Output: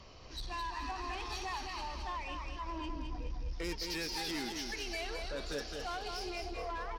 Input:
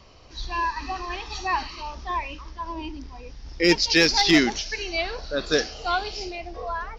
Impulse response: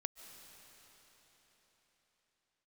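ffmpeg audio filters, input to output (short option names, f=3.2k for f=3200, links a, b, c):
-filter_complex "[0:a]asettb=1/sr,asplit=3[a][b][c];[a]atrim=end=2.904[d];[b]atrim=start=2.9:end=3.53,asetpts=PTS-STARTPTS,afade=t=in:d=0.004:c=qsin,afade=t=out:st=0.626:d=0.004:c=qsin,lowshelf=f=170:g=10[e];[c]atrim=start=3.526[f];[d][e]acrossfade=d=0.004:c1=hsin:c2=qsin[g];[g][f]acrossfade=d=0.004:c1=qsin:c2=hsin,acompressor=threshold=-33dB:ratio=3,asoftclip=type=tanh:threshold=-32.5dB,aecho=1:1:213|426|639|852|1065:0.562|0.208|0.077|0.0285|0.0105,volume=-2.5dB" -ar 48000 -c:a libmp3lame -b:a 96k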